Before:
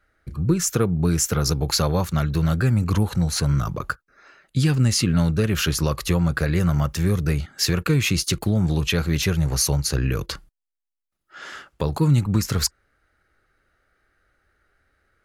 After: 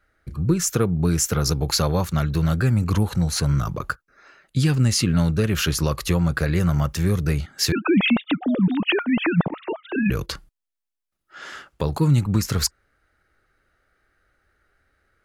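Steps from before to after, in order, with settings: 7.72–10.10 s: formants replaced by sine waves

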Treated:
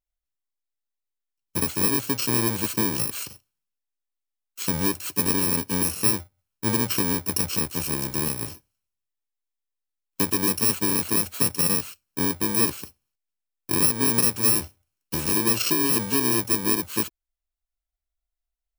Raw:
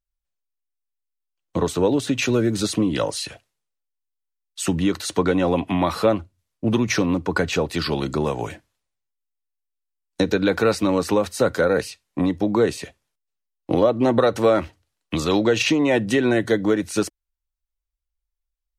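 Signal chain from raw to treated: bit-reversed sample order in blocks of 64 samples; trim -3.5 dB

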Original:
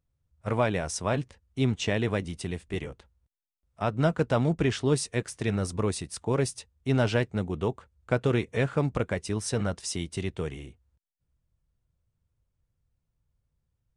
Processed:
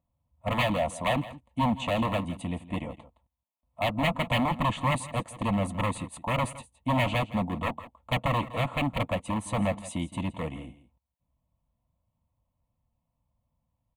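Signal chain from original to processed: high-order bell 500 Hz +12 dB 2.9 oct; wavefolder -15 dBFS; static phaser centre 1.5 kHz, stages 6; comb of notches 400 Hz; on a send: delay 166 ms -16.5 dB

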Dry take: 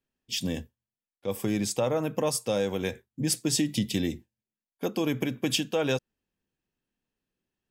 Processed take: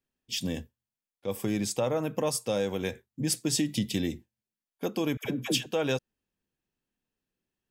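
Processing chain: 5.17–5.66 s: phase dispersion lows, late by 82 ms, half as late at 690 Hz; trim -1.5 dB

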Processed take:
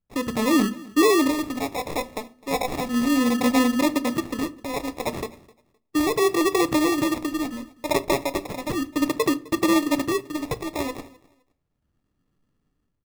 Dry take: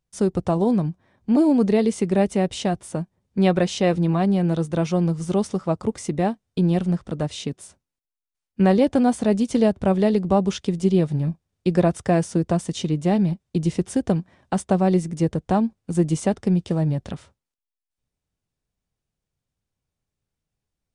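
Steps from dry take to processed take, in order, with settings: gliding tape speed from 131% -> 190%; low-pass 7.8 kHz 24 dB/octave; peaking EQ 680 Hz -5 dB 0.24 oct; band-stop 670 Hz, Q 12; de-hum 62.44 Hz, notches 4; in parallel at +1 dB: peak limiter -13.5 dBFS, peak gain reduction 6.5 dB; on the sum: level rider gain up to 12 dB; phase shifter stages 2, 0.34 Hz, lowest notch 160–2700 Hz; sample-and-hold 29×; on a send: feedback delay 258 ms, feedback 22%, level -23 dB; on the sum: simulated room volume 140 m³, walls furnished, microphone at 0.37 m; trim -9 dB

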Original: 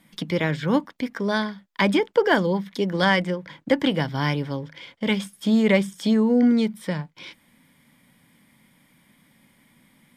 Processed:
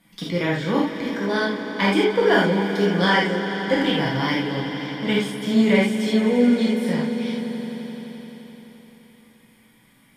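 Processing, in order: on a send: echo with a slow build-up 86 ms, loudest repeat 5, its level -15.5 dB; on the sum: gated-style reverb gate 110 ms flat, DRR -4.5 dB; trim -4 dB

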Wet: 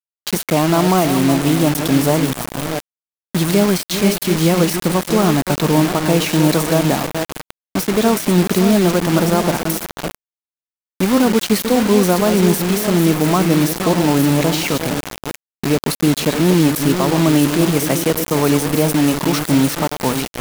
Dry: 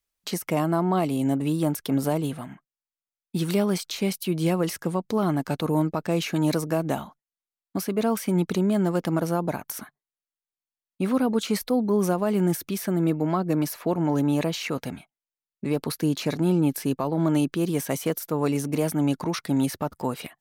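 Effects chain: chunks repeated in reverse 349 ms, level -8 dB; echo that smears into a reverb 580 ms, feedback 58%, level -15.5 dB; bit crusher 5-bit; trim +8.5 dB

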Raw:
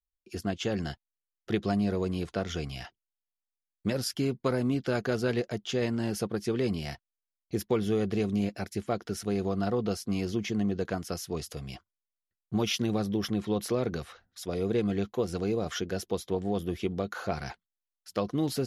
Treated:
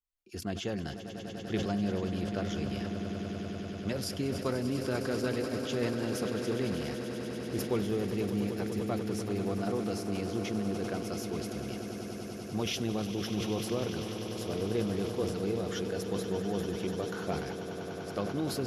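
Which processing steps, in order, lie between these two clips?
echo with a slow build-up 98 ms, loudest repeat 8, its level -13 dB; decay stretcher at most 54 dB/s; trim -5 dB

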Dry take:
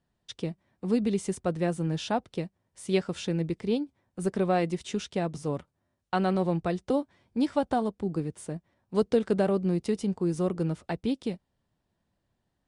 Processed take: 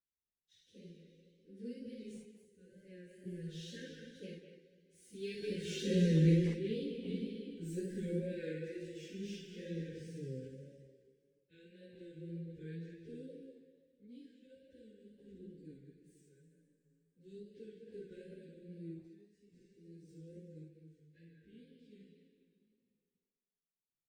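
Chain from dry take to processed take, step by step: median filter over 3 samples; Doppler pass-by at 3.35 s, 22 m/s, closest 9.3 m; brick-wall FIR band-stop 550–1500 Hz; de-hum 62.23 Hz, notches 7; reverberation RT60 1.2 s, pre-delay 33 ms, DRR 3.5 dB; random-step tremolo 3.5 Hz, depth 85%; chorus voices 4, 0.28 Hz, delay 28 ms, depth 3.7 ms; plain phase-vocoder stretch 1.9×; wow and flutter 60 cents; speakerphone echo 200 ms, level -8 dB; trim +4.5 dB

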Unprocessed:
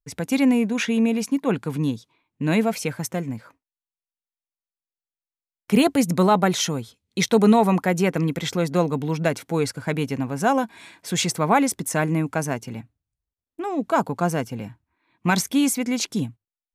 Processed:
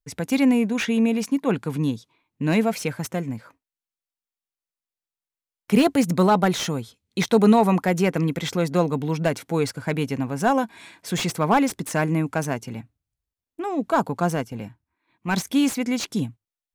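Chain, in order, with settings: 14.35–15.47 s: transient shaper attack -9 dB, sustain -5 dB; slew-rate limiter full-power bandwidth 240 Hz

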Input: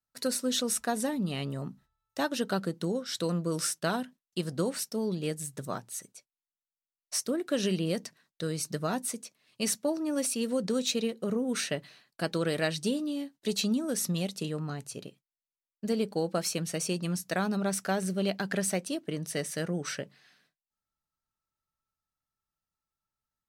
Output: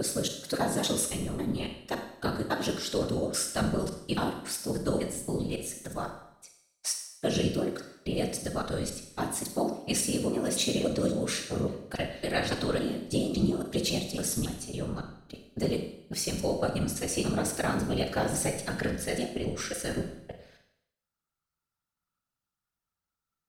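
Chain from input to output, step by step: slices played last to first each 278 ms, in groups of 2; whisper effect; Schroeder reverb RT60 0.74 s, combs from 33 ms, DRR 5 dB

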